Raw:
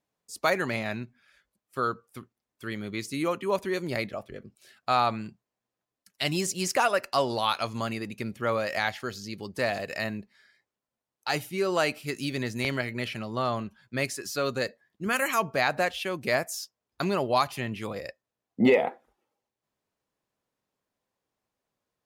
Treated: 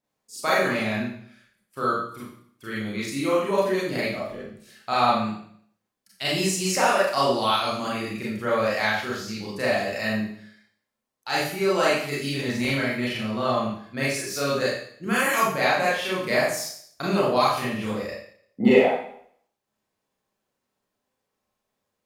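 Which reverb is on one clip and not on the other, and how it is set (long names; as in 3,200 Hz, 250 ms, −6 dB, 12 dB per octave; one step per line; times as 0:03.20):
four-comb reverb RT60 0.6 s, combs from 29 ms, DRR −7.5 dB
level −3.5 dB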